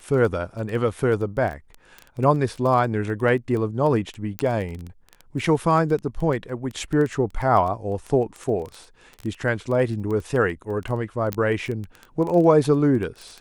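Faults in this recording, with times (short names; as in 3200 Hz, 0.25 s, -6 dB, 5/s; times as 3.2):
crackle 12/s -27 dBFS
4.39 pop -10 dBFS
11.33 pop -9 dBFS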